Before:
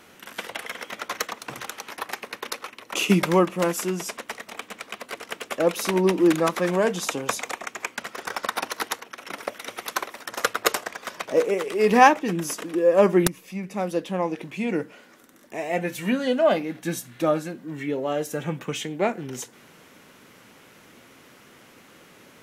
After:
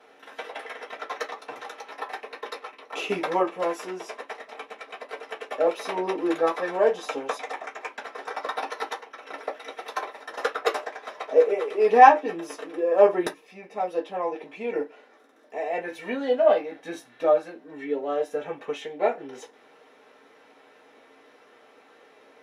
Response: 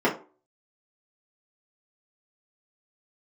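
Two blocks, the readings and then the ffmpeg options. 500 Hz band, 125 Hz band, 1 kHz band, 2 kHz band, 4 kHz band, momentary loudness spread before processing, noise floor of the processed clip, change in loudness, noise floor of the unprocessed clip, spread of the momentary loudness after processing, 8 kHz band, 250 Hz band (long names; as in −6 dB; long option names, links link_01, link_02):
0.0 dB, below −15 dB, +2.0 dB, −4.0 dB, −7.5 dB, 16 LU, −56 dBFS, −0.5 dB, −52 dBFS, 18 LU, below −10 dB, −9.0 dB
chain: -filter_complex "[1:a]atrim=start_sample=2205,atrim=end_sample=6174,asetrate=83790,aresample=44100[link_01];[0:a][link_01]afir=irnorm=-1:irlink=0,volume=-15.5dB"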